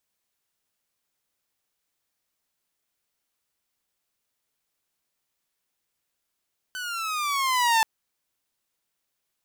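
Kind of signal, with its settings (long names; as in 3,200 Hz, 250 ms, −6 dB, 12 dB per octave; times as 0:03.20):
pitch glide with a swell saw, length 1.08 s, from 1,520 Hz, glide −9.5 semitones, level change +14 dB, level −14.5 dB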